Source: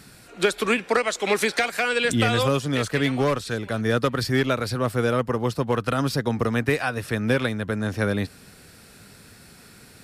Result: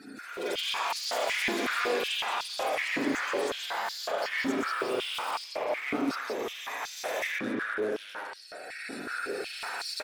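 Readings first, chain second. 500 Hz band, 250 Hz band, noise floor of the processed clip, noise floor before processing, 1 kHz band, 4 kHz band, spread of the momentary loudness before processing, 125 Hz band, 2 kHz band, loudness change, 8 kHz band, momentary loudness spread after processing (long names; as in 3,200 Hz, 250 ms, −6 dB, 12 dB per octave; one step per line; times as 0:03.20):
−9.0 dB, −10.0 dB, −45 dBFS, −49 dBFS, −4.5 dB, −2.5 dB, 5 LU, −28.5 dB, −5.0 dB, −7.5 dB, −5.5 dB, 9 LU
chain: spectral magnitudes quantised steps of 30 dB
camcorder AGC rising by 13 dB per second
high-shelf EQ 11,000 Hz −6 dB
brickwall limiter −16.5 dBFS, peak gain reduction 8.5 dB
downward compressor 1.5 to 1, threshold −38 dBFS, peak gain reduction 6.5 dB
hard clipping −33 dBFS, distortion −8 dB
on a send: single-tap delay 173 ms −4 dB
on the sum: spring reverb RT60 1.2 s, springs 33/37/47 ms, chirp 80 ms, DRR −2.5 dB
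delay with pitch and tempo change per echo 169 ms, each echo +6 semitones, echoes 3
high-pass on a step sequencer 5.4 Hz 270–4,600 Hz
level −5 dB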